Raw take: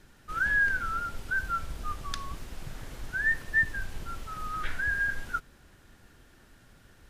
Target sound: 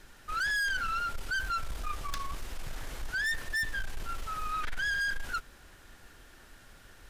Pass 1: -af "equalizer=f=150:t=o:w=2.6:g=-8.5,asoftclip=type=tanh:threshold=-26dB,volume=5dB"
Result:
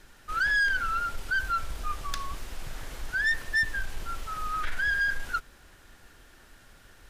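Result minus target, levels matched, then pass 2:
soft clip: distortion -6 dB
-af "equalizer=f=150:t=o:w=2.6:g=-8.5,asoftclip=type=tanh:threshold=-33.5dB,volume=5dB"

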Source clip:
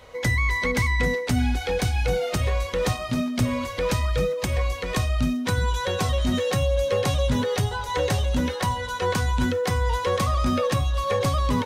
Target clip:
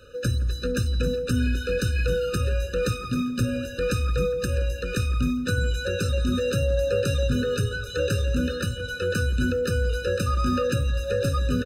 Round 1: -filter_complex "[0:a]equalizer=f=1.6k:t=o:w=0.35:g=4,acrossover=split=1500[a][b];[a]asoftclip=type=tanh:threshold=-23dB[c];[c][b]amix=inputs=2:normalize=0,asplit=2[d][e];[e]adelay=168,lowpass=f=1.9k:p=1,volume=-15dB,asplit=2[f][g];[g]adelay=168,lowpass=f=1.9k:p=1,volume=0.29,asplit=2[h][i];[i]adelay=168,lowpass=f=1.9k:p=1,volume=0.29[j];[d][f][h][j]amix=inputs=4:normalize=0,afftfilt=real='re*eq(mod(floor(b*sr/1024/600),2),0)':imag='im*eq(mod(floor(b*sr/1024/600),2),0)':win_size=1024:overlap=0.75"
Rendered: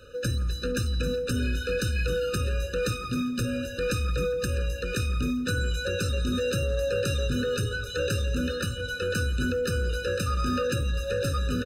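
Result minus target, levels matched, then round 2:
soft clip: distortion +15 dB
-filter_complex "[0:a]equalizer=f=1.6k:t=o:w=0.35:g=4,acrossover=split=1500[a][b];[a]asoftclip=type=tanh:threshold=-12dB[c];[c][b]amix=inputs=2:normalize=0,asplit=2[d][e];[e]adelay=168,lowpass=f=1.9k:p=1,volume=-15dB,asplit=2[f][g];[g]adelay=168,lowpass=f=1.9k:p=1,volume=0.29,asplit=2[h][i];[i]adelay=168,lowpass=f=1.9k:p=1,volume=0.29[j];[d][f][h][j]amix=inputs=4:normalize=0,afftfilt=real='re*eq(mod(floor(b*sr/1024/600),2),0)':imag='im*eq(mod(floor(b*sr/1024/600),2),0)':win_size=1024:overlap=0.75"

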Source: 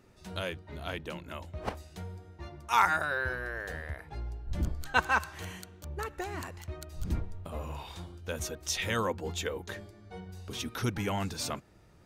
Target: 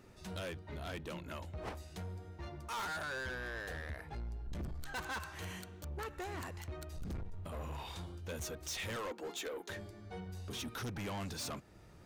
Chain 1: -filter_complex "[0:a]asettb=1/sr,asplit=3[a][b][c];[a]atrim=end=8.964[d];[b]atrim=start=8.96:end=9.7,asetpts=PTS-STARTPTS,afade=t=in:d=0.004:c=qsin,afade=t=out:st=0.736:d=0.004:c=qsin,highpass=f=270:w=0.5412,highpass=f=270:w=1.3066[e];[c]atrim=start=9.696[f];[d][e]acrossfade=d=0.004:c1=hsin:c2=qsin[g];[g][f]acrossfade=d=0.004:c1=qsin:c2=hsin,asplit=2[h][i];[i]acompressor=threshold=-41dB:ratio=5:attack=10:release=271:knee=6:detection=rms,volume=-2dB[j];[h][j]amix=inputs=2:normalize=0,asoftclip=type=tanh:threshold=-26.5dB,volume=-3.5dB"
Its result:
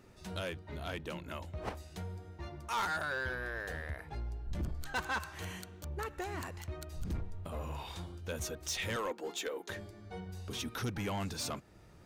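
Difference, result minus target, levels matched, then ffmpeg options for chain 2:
soft clip: distortion -4 dB
-filter_complex "[0:a]asettb=1/sr,asplit=3[a][b][c];[a]atrim=end=8.964[d];[b]atrim=start=8.96:end=9.7,asetpts=PTS-STARTPTS,afade=t=in:d=0.004:c=qsin,afade=t=out:st=0.736:d=0.004:c=qsin,highpass=f=270:w=0.5412,highpass=f=270:w=1.3066[e];[c]atrim=start=9.696[f];[d][e]acrossfade=d=0.004:c1=hsin:c2=qsin[g];[g][f]acrossfade=d=0.004:c1=qsin:c2=hsin,asplit=2[h][i];[i]acompressor=threshold=-41dB:ratio=5:attack=10:release=271:knee=6:detection=rms,volume=-2dB[j];[h][j]amix=inputs=2:normalize=0,asoftclip=type=tanh:threshold=-34dB,volume=-3.5dB"

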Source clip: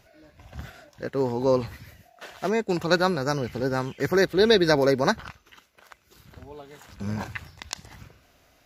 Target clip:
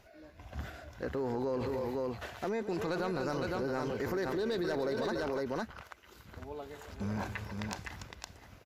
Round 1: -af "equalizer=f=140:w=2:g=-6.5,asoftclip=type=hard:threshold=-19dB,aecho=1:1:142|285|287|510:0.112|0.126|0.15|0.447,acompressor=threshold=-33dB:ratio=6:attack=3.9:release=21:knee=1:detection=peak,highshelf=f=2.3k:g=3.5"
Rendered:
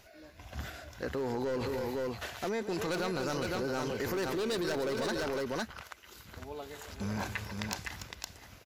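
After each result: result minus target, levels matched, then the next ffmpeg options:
hard clip: distortion +10 dB; 4000 Hz band +5.5 dB
-af "equalizer=f=140:w=2:g=-6.5,asoftclip=type=hard:threshold=-11.5dB,aecho=1:1:142|285|287|510:0.112|0.126|0.15|0.447,acompressor=threshold=-33dB:ratio=6:attack=3.9:release=21:knee=1:detection=peak,highshelf=f=2.3k:g=3.5"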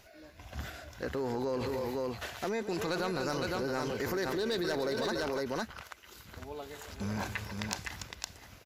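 4000 Hz band +6.0 dB
-af "equalizer=f=140:w=2:g=-6.5,asoftclip=type=hard:threshold=-11.5dB,aecho=1:1:142|285|287|510:0.112|0.126|0.15|0.447,acompressor=threshold=-33dB:ratio=6:attack=3.9:release=21:knee=1:detection=peak,highshelf=f=2.3k:g=-5.5"

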